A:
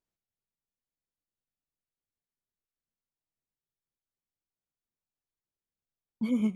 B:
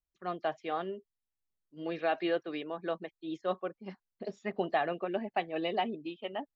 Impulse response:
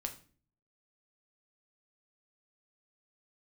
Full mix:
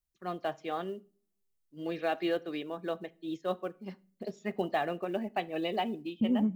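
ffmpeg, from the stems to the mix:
-filter_complex "[0:a]afwtdn=0.00562,acompressor=threshold=-30dB:ratio=6,volume=0.5dB[a];[1:a]highshelf=f=4.4k:g=9,acrusher=bits=8:mode=log:mix=0:aa=0.000001,volume=-5dB,asplit=2[b][c];[c]volume=-8.5dB[d];[2:a]atrim=start_sample=2205[e];[d][e]afir=irnorm=-1:irlink=0[f];[a][b][f]amix=inputs=3:normalize=0,lowshelf=f=370:g=6.5"

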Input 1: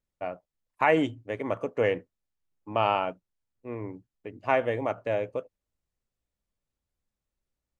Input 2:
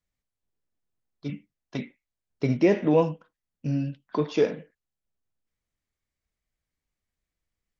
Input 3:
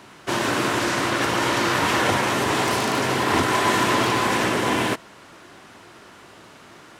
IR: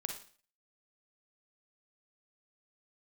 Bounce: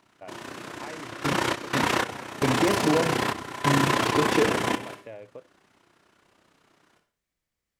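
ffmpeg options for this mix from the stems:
-filter_complex "[0:a]acompressor=threshold=-29dB:ratio=6,volume=-9dB[a];[1:a]highpass=f=120:p=1,acompressor=threshold=-23dB:ratio=10,volume=0.5dB,asplit=3[b][c][d];[c]volume=-6.5dB[e];[2:a]tremolo=f=31:d=0.788,volume=-1.5dB,asplit=2[f][g];[g]volume=-14.5dB[h];[d]apad=whole_len=308550[i];[f][i]sidechaingate=range=-22dB:threshold=-57dB:ratio=16:detection=peak[j];[3:a]atrim=start_sample=2205[k];[e][h]amix=inputs=2:normalize=0[l];[l][k]afir=irnorm=-1:irlink=0[m];[a][b][j][m]amix=inputs=4:normalize=0"

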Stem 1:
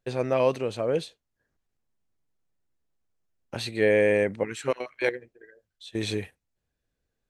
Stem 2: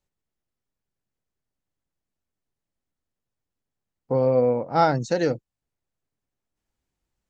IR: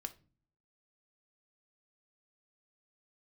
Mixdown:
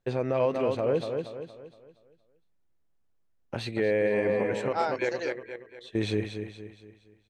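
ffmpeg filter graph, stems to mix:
-filter_complex "[0:a]lowpass=f=2.1k:p=1,volume=2dB,asplit=2[a][b];[b]volume=-8dB[c];[1:a]highpass=540,volume=-6.5dB[d];[c]aecho=0:1:234|468|702|936|1170|1404:1|0.42|0.176|0.0741|0.0311|0.0131[e];[a][d][e]amix=inputs=3:normalize=0,alimiter=limit=-16.5dB:level=0:latency=1:release=108"

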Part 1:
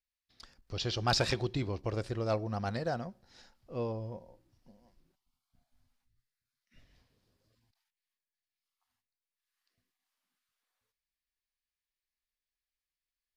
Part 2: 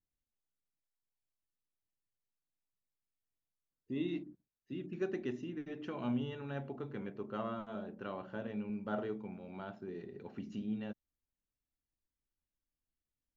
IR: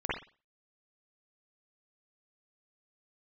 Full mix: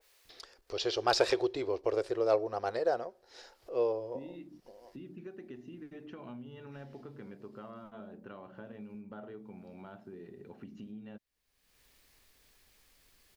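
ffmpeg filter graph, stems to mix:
-filter_complex "[0:a]lowshelf=f=280:t=q:w=3:g=-13.5,volume=1dB[a];[1:a]highshelf=f=5.3k:g=-8.5,acompressor=threshold=-40dB:ratio=6,adelay=250,volume=-3dB[b];[a][b]amix=inputs=2:normalize=0,acompressor=mode=upward:threshold=-44dB:ratio=2.5,adynamicequalizer=threshold=0.00631:dfrequency=1600:dqfactor=0.7:tfrequency=1600:tqfactor=0.7:attack=5:release=100:ratio=0.375:range=2:mode=cutabove:tftype=highshelf"

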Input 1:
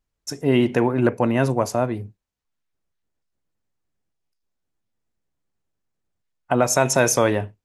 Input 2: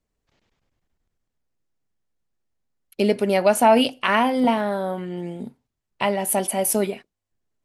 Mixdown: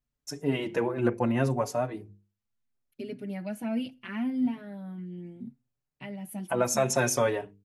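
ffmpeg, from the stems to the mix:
-filter_complex "[0:a]bandreject=f=50:t=h:w=6,bandreject=f=100:t=h:w=6,bandreject=f=150:t=h:w=6,bandreject=f=200:t=h:w=6,bandreject=f=250:t=h:w=6,bandreject=f=300:t=h:w=6,bandreject=f=350:t=h:w=6,bandreject=f=400:t=h:w=6,bandreject=f=450:t=h:w=6,volume=-4.5dB,asplit=2[a][b];[1:a]equalizer=f=125:t=o:w=1:g=12,equalizer=f=250:t=o:w=1:g=10,equalizer=f=500:t=o:w=1:g=-7,equalizer=f=1k:t=o:w=1:g=-8,equalizer=f=2k:t=o:w=1:g=3,equalizer=f=4k:t=o:w=1:g=-3,equalizer=f=8k:t=o:w=1:g=-7,volume=-15.5dB[c];[b]apad=whole_len=337280[d];[c][d]sidechaincompress=threshold=-25dB:ratio=8:attack=16:release=390[e];[a][e]amix=inputs=2:normalize=0,asplit=2[f][g];[g]adelay=5.2,afreqshift=0.71[h];[f][h]amix=inputs=2:normalize=1"

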